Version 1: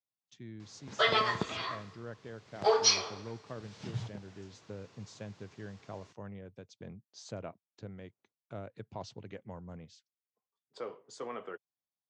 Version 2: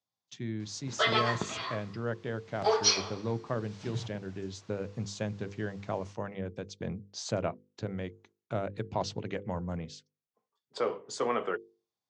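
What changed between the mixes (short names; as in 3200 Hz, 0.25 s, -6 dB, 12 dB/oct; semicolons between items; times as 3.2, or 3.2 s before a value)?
speech +11.0 dB; master: add notches 50/100/150/200/250/300/350/400/450/500 Hz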